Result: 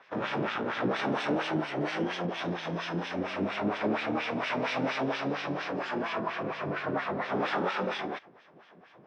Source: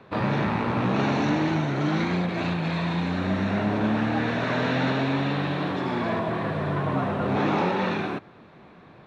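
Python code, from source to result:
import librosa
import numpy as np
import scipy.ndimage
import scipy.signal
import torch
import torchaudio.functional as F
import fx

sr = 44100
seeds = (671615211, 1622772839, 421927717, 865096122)

y = fx.formant_shift(x, sr, semitones=6)
y = fx.filter_lfo_bandpass(y, sr, shape='sine', hz=4.3, low_hz=270.0, high_hz=3000.0, q=1.1)
y = y * librosa.db_to_amplitude(-1.0)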